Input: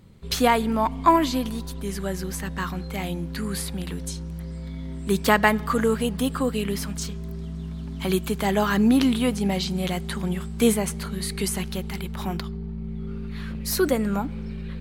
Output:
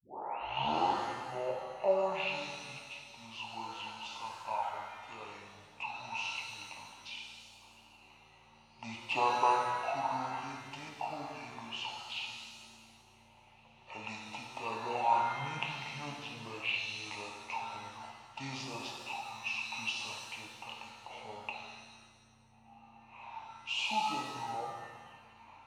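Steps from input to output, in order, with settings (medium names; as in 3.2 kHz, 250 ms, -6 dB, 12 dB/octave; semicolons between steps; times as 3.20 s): tape start-up on the opening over 0.73 s; two resonant band-passes 2.7 kHz, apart 1.6 oct; speed mistake 78 rpm record played at 45 rpm; pitch-shifted reverb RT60 1.5 s, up +7 st, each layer -8 dB, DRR 0 dB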